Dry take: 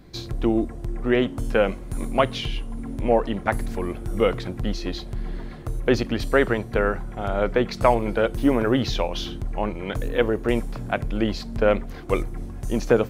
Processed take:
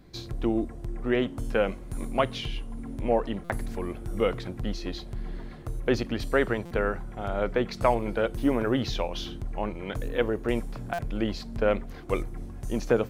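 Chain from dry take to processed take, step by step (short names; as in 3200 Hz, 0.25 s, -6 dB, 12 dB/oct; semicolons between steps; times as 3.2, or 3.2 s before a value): stuck buffer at 3.44/6.65/10.93, samples 256, times 9; gain -5 dB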